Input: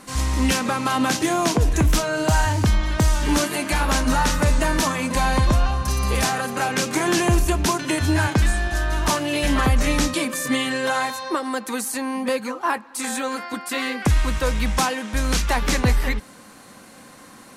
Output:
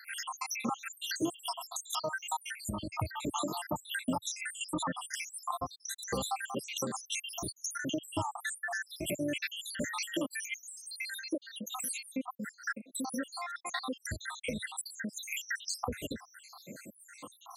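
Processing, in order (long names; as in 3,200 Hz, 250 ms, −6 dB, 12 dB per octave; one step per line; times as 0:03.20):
time-frequency cells dropped at random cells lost 84%
high-pass filter 110 Hz 24 dB per octave
downward compressor 2 to 1, threshold −41 dBFS, peak gain reduction 13 dB
level +2.5 dB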